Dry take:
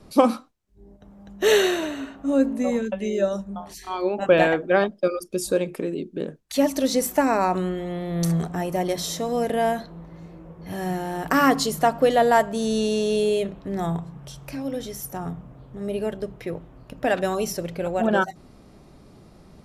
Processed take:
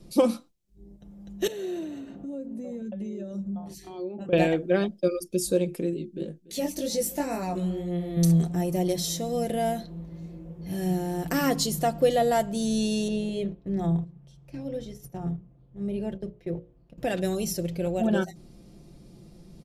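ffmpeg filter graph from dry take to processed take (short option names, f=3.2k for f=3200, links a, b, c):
-filter_complex "[0:a]asettb=1/sr,asplit=3[a][b][c];[a]atrim=end=1.474[d];[b]atrim=start=1.47:end=4.33,asetpts=PTS-STARTPTS,afade=t=in:d=0.004:c=qsin,afade=t=out:st=2.856:d=0.004:c=qsin,highpass=87,tiltshelf=f=1.1k:g=6.5,acompressor=threshold=-31dB:ratio=4:attack=3.2:release=140:knee=1:detection=peak[e];[c]atrim=start=4.326[f];[d][e]acrossfade=d=0.004:c1=hsin:c2=qsin[g];[g][f]acrossfade=d=0.004:c1=qsin:c2=hsin,asettb=1/sr,asplit=3[h][i][j];[h]atrim=end=5.934[k];[i]atrim=start=5.93:end=8.17,asetpts=PTS-STARTPTS,afade=t=in:d=0.004:c=qsin,afade=t=out:st=2.236:d=0.004:c=qsin,aecho=1:1:288:0.1,atrim=end_sample=98784,flanger=delay=17:depth=3.9:speed=2[l];[j]atrim=start=8.166[m];[k][l]acrossfade=d=0.004:c1=hsin:c2=qsin[n];[n][m]acrossfade=d=0.004:c1=qsin:c2=hsin,asettb=1/sr,asplit=3[o][p][q];[o]atrim=end=13.084[r];[p]atrim=start=13.08:end=16.98,asetpts=PTS-STARTPTS,afade=t=in:d=0.004:c=qsin,afade=t=out:st=3.896:d=0.004:c=qsin,agate=range=-11dB:threshold=-36dB:ratio=16:release=100:detection=peak,aemphasis=mode=reproduction:type=75kf,bandreject=f=60:t=h:w=6,bandreject=f=120:t=h:w=6,bandreject=f=180:t=h:w=6,bandreject=f=240:t=h:w=6,bandreject=f=300:t=h:w=6,bandreject=f=360:t=h:w=6,bandreject=f=420:t=h:w=6,bandreject=f=480:t=h:w=6,bandreject=f=540:t=h:w=6,bandreject=f=600:t=h:w=6[s];[q]atrim=start=16.976[t];[r][s]acrossfade=d=0.004:c1=hsin:c2=qsin[u];[u][t]acrossfade=d=0.004:c1=qsin:c2=hsin,equalizer=f=1.2k:w=0.68:g=-13.5,aecho=1:1:5.8:0.49"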